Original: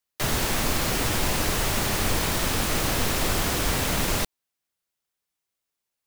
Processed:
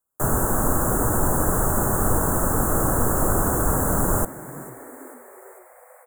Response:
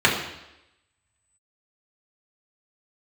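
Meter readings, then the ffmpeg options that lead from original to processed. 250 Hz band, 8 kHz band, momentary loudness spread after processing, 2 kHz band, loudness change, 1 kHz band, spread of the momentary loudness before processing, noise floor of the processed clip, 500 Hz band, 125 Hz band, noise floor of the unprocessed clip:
+5.0 dB, +2.5 dB, 15 LU, −4.0 dB, +3.0 dB, +4.5 dB, 1 LU, −51 dBFS, +5.0 dB, +5.0 dB, −84 dBFS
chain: -filter_complex "[0:a]asuperstop=centerf=3400:order=12:qfactor=0.61,asplit=7[link_01][link_02][link_03][link_04][link_05][link_06][link_07];[link_02]adelay=446,afreqshift=120,volume=-18.5dB[link_08];[link_03]adelay=892,afreqshift=240,volume=-22.7dB[link_09];[link_04]adelay=1338,afreqshift=360,volume=-26.8dB[link_10];[link_05]adelay=1784,afreqshift=480,volume=-31dB[link_11];[link_06]adelay=2230,afreqshift=600,volume=-35.1dB[link_12];[link_07]adelay=2676,afreqshift=720,volume=-39.3dB[link_13];[link_01][link_08][link_09][link_10][link_11][link_12][link_13]amix=inputs=7:normalize=0,asplit=2[link_14][link_15];[1:a]atrim=start_sample=2205,asetrate=31752,aresample=44100[link_16];[link_15][link_16]afir=irnorm=-1:irlink=0,volume=-40.5dB[link_17];[link_14][link_17]amix=inputs=2:normalize=0,volume=4.5dB"

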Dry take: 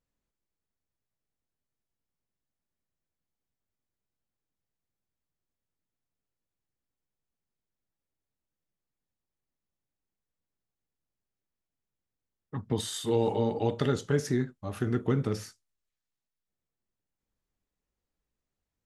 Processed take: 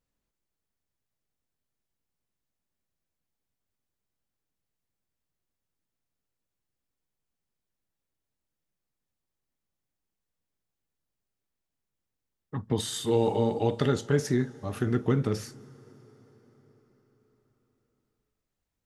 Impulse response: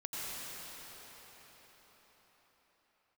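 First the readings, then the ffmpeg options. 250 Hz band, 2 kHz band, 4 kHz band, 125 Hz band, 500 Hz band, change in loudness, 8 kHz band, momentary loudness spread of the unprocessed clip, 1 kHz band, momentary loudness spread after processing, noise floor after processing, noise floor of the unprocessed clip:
+2.0 dB, +2.0 dB, +2.0 dB, +2.0 dB, +2.0 dB, +2.0 dB, +2.0 dB, 10 LU, +2.0 dB, 9 LU, below −85 dBFS, below −85 dBFS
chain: -filter_complex "[0:a]asplit=2[link_01][link_02];[1:a]atrim=start_sample=2205,adelay=49[link_03];[link_02][link_03]afir=irnorm=-1:irlink=0,volume=-24dB[link_04];[link_01][link_04]amix=inputs=2:normalize=0,volume=2dB"

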